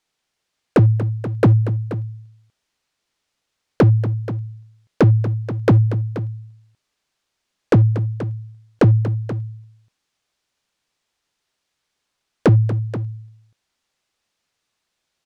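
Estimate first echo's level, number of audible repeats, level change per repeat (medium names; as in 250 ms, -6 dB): -13.5 dB, 2, 0.0 dB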